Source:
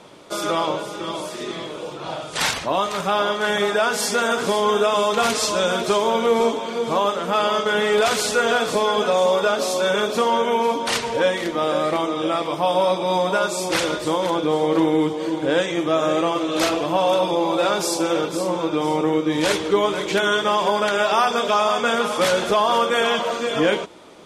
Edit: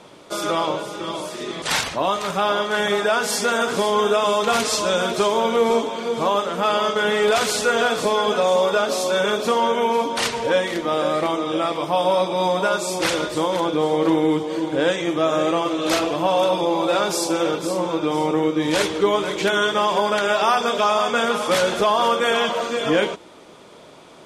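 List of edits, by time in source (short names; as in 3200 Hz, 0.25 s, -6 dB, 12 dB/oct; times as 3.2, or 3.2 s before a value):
1.62–2.32 cut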